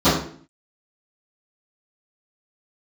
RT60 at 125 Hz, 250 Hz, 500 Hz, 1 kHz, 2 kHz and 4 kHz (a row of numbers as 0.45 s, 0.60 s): 0.60 s, 0.65 s, 0.55 s, 0.45 s, 0.45 s, 0.40 s